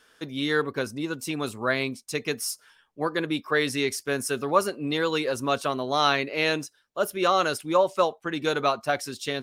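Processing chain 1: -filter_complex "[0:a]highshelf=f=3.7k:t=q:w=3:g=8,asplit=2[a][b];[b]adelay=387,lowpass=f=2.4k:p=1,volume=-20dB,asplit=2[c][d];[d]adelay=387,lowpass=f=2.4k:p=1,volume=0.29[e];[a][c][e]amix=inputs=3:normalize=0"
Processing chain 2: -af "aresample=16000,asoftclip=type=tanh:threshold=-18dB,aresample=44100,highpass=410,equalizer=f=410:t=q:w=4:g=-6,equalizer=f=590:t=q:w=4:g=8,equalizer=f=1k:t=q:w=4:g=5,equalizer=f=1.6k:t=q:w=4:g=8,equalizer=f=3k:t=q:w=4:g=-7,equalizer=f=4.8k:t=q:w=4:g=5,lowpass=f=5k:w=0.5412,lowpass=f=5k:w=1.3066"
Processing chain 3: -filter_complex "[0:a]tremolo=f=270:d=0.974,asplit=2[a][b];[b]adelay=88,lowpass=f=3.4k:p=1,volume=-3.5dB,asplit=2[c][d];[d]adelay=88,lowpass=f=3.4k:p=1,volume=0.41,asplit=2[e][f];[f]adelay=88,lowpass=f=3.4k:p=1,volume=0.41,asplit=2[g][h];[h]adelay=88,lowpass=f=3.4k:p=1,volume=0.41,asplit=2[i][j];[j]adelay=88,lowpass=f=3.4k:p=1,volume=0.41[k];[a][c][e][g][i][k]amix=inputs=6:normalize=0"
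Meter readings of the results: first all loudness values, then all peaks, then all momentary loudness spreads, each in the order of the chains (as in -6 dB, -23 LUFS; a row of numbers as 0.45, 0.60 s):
-24.5, -26.5, -29.0 LUFS; -6.0, -9.5, -8.0 dBFS; 8, 12, 8 LU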